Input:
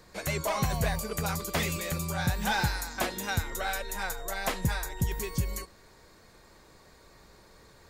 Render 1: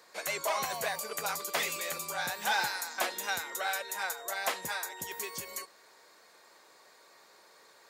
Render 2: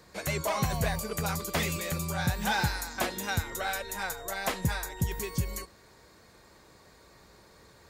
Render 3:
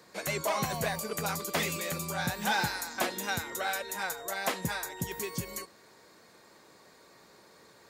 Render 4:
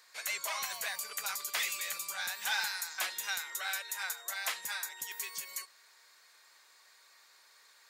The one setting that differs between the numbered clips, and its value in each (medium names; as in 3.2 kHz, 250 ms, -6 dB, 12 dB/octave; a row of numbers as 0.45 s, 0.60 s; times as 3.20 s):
high-pass, cutoff frequency: 540 Hz, 50 Hz, 190 Hz, 1.5 kHz